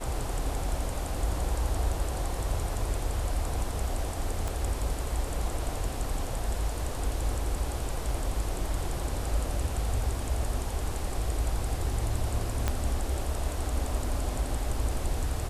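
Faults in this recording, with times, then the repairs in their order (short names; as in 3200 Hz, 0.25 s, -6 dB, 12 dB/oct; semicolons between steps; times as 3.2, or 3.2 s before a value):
4.48 pop
12.68 pop -13 dBFS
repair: de-click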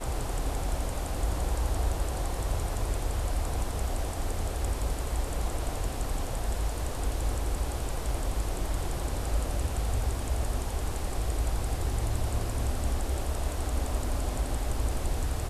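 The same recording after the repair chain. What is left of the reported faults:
4.48 pop
12.68 pop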